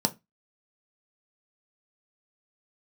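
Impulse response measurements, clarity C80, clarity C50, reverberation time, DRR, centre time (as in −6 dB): 30.5 dB, 21.5 dB, 0.20 s, 5.5 dB, 5 ms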